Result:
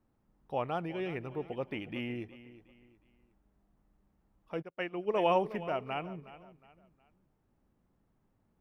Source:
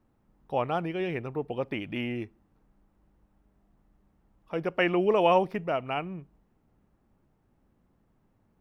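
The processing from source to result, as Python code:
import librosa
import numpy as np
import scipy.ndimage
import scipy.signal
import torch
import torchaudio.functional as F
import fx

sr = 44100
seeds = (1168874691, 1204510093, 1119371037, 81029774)

p1 = x + fx.echo_feedback(x, sr, ms=364, feedback_pct=35, wet_db=-16, dry=0)
p2 = fx.upward_expand(p1, sr, threshold_db=-41.0, expansion=2.5, at=(4.61, 5.14), fade=0.02)
y = p2 * 10.0 ** (-5.5 / 20.0)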